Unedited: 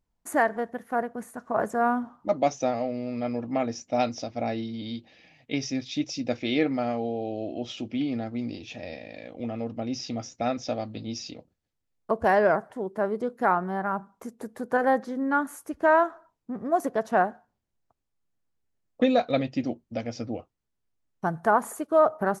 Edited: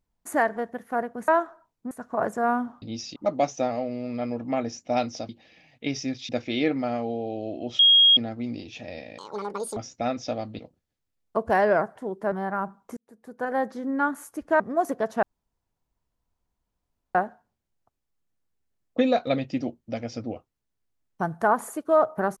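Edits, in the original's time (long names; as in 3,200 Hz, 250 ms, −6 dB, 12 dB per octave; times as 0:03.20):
0:04.32–0:04.96: remove
0:05.96–0:06.24: remove
0:07.74–0:08.12: beep over 3,270 Hz −12.5 dBFS
0:09.13–0:10.17: play speed 177%
0:10.99–0:11.33: move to 0:02.19
0:13.06–0:13.64: remove
0:14.29–0:15.20: fade in
0:15.92–0:16.55: move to 0:01.28
0:17.18: splice in room tone 1.92 s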